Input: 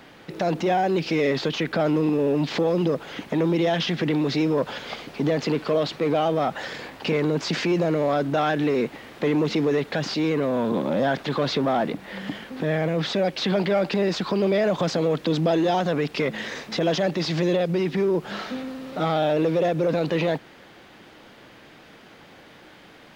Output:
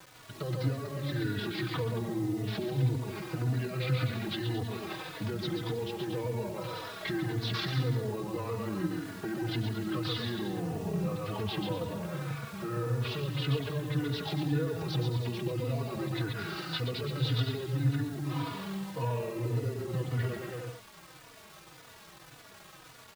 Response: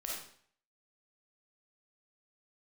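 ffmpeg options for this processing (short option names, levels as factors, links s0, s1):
-filter_complex "[0:a]highpass=f=78:p=1,equalizer=f=3800:t=o:w=1.5:g=-10,bandreject=f=50:t=h:w=6,bandreject=f=100:t=h:w=6,bandreject=f=150:t=h:w=6,bandreject=f=200:t=h:w=6,bandreject=f=250:t=h:w=6,bandreject=f=300:t=h:w=6,bandreject=f=350:t=h:w=6,aecho=1:1:130|234|317.2|383.8|437:0.631|0.398|0.251|0.158|0.1,acrossover=split=360[s0][s1];[s1]acompressor=threshold=0.0398:ratio=10[s2];[s0][s2]amix=inputs=2:normalize=0,bandreject=f=1800:w=21,aecho=1:1:4.7:0.42,asetrate=33038,aresample=44100,atempo=1.33484,equalizer=f=250:t=o:w=1:g=-10,equalizer=f=500:t=o:w=1:g=-4,equalizer=f=4000:t=o:w=1:g=10,acrusher=bits=7:mix=0:aa=0.000001,asplit=2[s3][s4];[s4]adelay=3.4,afreqshift=-1.8[s5];[s3][s5]amix=inputs=2:normalize=1"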